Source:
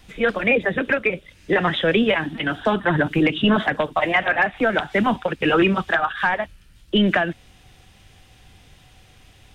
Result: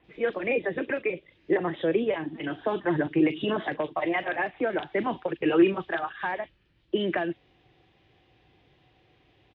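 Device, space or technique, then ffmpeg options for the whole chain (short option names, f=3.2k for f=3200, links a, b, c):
guitar cabinet: -filter_complex "[0:a]highpass=80,equalizer=f=83:t=q:w=4:g=-10,equalizer=f=210:t=q:w=4:g=-7,equalizer=f=340:t=q:w=4:g=8,equalizer=f=1.4k:t=q:w=4:g=-6,lowpass=f=3.7k:w=0.5412,lowpass=f=3.7k:w=1.3066,equalizer=f=440:t=o:w=0.77:g=2.5,acrossover=split=3000[a][b];[b]adelay=40[c];[a][c]amix=inputs=2:normalize=0,asettb=1/sr,asplit=3[d][e][f];[d]atrim=end=1.574[g];[e]atrim=start=1.57:end=2.48,asetpts=PTS-STARTPTS,afade=t=in:d=0.004:c=qsin,afade=t=out:st=0.906:d=0.004:c=qsin,adynamicequalizer=threshold=0.02:dfrequency=1600:dqfactor=0.7:tfrequency=1600:tqfactor=0.7:attack=5:release=100:ratio=0.375:range=3:mode=cutabove:tftype=highshelf[h];[f]atrim=start=2.476[i];[g][h]acrossfade=d=0.004:c1=hsin:c2=qsin[j];[j][i]acrossfade=d=0.004:c1=qsin:c2=hsin,volume=-8.5dB"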